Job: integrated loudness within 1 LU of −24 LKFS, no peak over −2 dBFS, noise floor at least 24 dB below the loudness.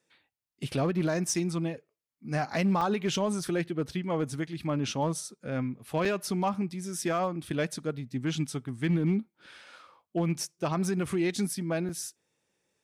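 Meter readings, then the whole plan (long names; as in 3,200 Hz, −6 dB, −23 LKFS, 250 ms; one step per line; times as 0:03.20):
share of clipped samples 0.5%; peaks flattened at −20.5 dBFS; number of dropouts 4; longest dropout 4.2 ms; integrated loudness −30.5 LKFS; sample peak −20.5 dBFS; target loudness −24.0 LKFS
→ clipped peaks rebuilt −20.5 dBFS
repair the gap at 0:01.34/0:02.81/0:06.05/0:11.89, 4.2 ms
level +6.5 dB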